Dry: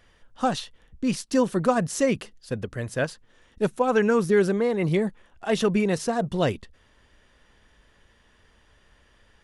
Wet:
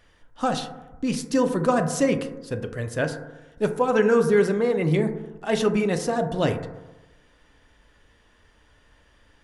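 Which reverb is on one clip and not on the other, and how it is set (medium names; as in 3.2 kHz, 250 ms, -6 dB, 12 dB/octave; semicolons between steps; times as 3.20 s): FDN reverb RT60 1.1 s, low-frequency decay 1×, high-frequency decay 0.25×, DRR 6 dB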